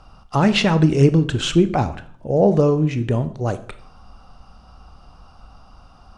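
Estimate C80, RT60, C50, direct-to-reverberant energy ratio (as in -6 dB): 18.5 dB, 0.50 s, 15.0 dB, 11.0 dB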